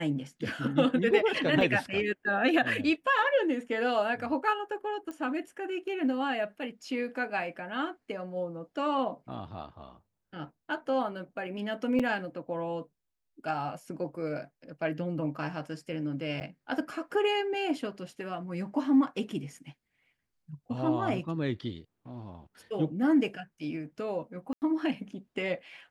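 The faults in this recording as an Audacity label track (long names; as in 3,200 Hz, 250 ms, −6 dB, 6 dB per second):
1.610000	1.610000	drop-out 2.6 ms
5.110000	5.110000	click −27 dBFS
11.990000	12.000000	drop-out 5.9 ms
16.400000	16.410000	drop-out 9.3 ms
24.530000	24.620000	drop-out 89 ms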